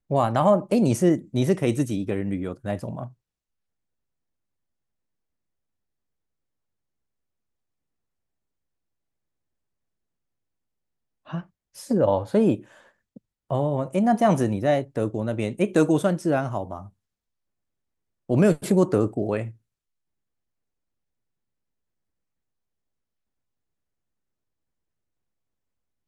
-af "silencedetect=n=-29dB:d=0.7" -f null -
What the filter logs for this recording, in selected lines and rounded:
silence_start: 3.05
silence_end: 11.33 | silence_duration: 8.29
silence_start: 12.56
silence_end: 13.51 | silence_duration: 0.94
silence_start: 16.79
silence_end: 18.30 | silence_duration: 1.50
silence_start: 19.48
silence_end: 26.08 | silence_duration: 6.60